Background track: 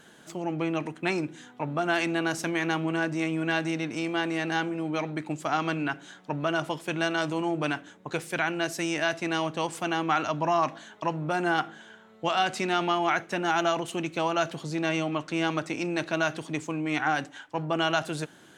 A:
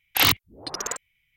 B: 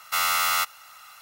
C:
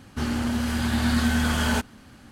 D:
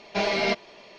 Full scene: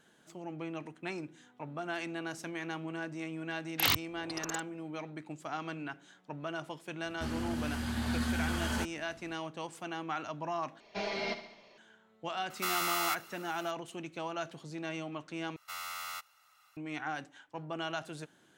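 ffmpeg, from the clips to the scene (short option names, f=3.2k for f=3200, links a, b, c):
-filter_complex "[2:a]asplit=2[a][b];[0:a]volume=-11.5dB[c];[4:a]aecho=1:1:69|138|207|276|345|414:0.266|0.144|0.0776|0.0419|0.0226|0.0122[d];[a]acompressor=threshold=-28dB:ratio=3:attack=11:release=44:knee=6:detection=peak[e];[b]highshelf=f=11k:g=-4[f];[c]asplit=3[g][h][i];[g]atrim=end=10.804[j];[d]atrim=end=0.98,asetpts=PTS-STARTPTS,volume=-11.5dB[k];[h]atrim=start=11.776:end=15.564[l];[f]atrim=end=1.21,asetpts=PTS-STARTPTS,volume=-17.5dB[m];[i]atrim=start=16.766[n];[1:a]atrim=end=1.36,asetpts=PTS-STARTPTS,volume=-9.5dB,afade=t=in:d=0.004:c=hsin,afade=t=out:st=1.356:d=0.004:c=hsin,adelay=3630[o];[3:a]atrim=end=2.31,asetpts=PTS-STARTPTS,volume=-10.5dB,afade=t=in:d=0.004:c=hsin,afade=t=out:st=2.306:d=0.004:c=hsin,adelay=7040[p];[e]atrim=end=1.21,asetpts=PTS-STARTPTS,volume=-5.5dB,afade=t=in:d=0.004:c=hsin,afade=t=out:st=1.206:d=0.004:c=hsin,adelay=12500[q];[j][k]acrossfade=d=0.004:c1=hsin:c2=hsin[r];[r][l]acrossfade=d=0.004:c1=hsin:c2=hsin[s];[s][m]acrossfade=d=0.004:c1=hsin:c2=hsin[t];[t][n]acrossfade=d=0.004:c1=hsin:c2=hsin[u];[u][o][p][q]amix=inputs=4:normalize=0"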